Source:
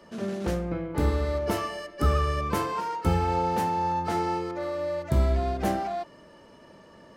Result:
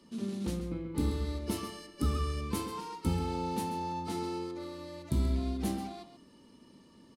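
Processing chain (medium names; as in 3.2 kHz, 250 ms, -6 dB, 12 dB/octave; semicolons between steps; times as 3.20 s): fifteen-band graphic EQ 250 Hz +9 dB, 630 Hz -12 dB, 1.6 kHz -9 dB, 4 kHz +6 dB, 10 kHz +9 dB; echo from a far wall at 23 m, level -10 dB; trim -7.5 dB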